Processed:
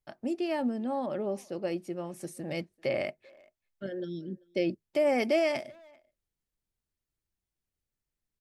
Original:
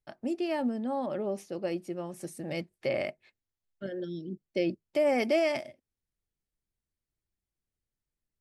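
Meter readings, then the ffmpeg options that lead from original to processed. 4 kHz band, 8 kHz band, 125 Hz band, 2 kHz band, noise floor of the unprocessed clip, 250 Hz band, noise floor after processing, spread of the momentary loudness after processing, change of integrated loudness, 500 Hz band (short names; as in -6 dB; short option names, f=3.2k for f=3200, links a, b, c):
0.0 dB, 0.0 dB, 0.0 dB, 0.0 dB, under -85 dBFS, 0.0 dB, under -85 dBFS, 13 LU, 0.0 dB, 0.0 dB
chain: -filter_complex "[0:a]asplit=2[a][b];[b]adelay=390,highpass=300,lowpass=3.4k,asoftclip=type=hard:threshold=-26.5dB,volume=-25dB[c];[a][c]amix=inputs=2:normalize=0"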